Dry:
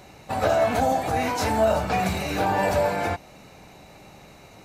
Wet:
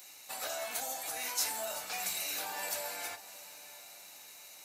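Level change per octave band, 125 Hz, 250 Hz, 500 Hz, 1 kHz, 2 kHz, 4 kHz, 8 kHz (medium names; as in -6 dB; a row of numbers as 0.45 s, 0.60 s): under -35 dB, -29.0 dB, -21.5 dB, -19.0 dB, -11.0 dB, -3.5 dB, +2.5 dB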